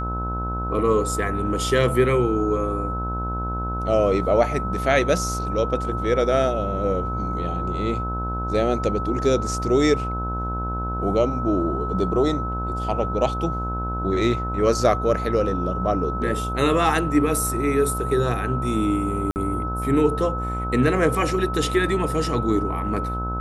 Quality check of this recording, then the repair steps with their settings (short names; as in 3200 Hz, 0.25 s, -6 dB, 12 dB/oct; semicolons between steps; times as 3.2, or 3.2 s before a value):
buzz 60 Hz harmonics 25 -28 dBFS
tone 1300 Hz -28 dBFS
19.31–19.36 gap 49 ms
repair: notch 1300 Hz, Q 30; de-hum 60 Hz, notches 25; interpolate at 19.31, 49 ms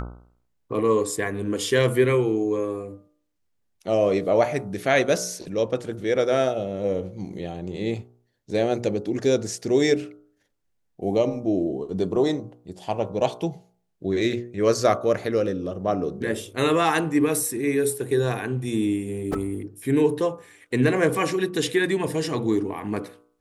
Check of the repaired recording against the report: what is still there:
none